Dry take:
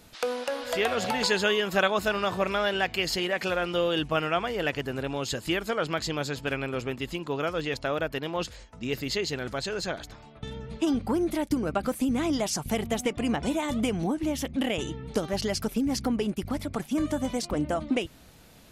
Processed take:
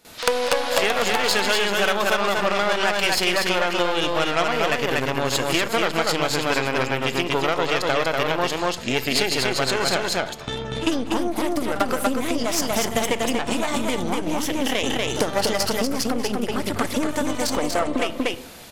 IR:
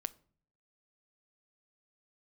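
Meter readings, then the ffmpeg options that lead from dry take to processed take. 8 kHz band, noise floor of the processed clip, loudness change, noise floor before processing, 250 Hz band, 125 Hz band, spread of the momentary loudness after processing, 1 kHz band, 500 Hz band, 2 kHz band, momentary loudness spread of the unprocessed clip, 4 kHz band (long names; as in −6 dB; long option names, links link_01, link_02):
+9.5 dB, −32 dBFS, +6.5 dB, −51 dBFS, +3.0 dB, +3.0 dB, 5 LU, +8.5 dB, +6.0 dB, +8.0 dB, 6 LU, +8.5 dB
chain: -filter_complex "[0:a]aeval=exprs='0.316*(cos(1*acos(clip(val(0)/0.316,-1,1)))-cos(1*PI/2))+0.0398*(cos(8*acos(clip(val(0)/0.316,-1,1)))-cos(8*PI/2))':channel_layout=same,aecho=1:1:240:0.668,asplit=2[link_01][link_02];[1:a]atrim=start_sample=2205,asetrate=35721,aresample=44100,adelay=49[link_03];[link_02][link_03]afir=irnorm=-1:irlink=0,volume=15.5dB[link_04];[link_01][link_04]amix=inputs=2:normalize=0,acompressor=threshold=-10dB:ratio=6,lowshelf=frequency=230:gain=-12,volume=-2.5dB"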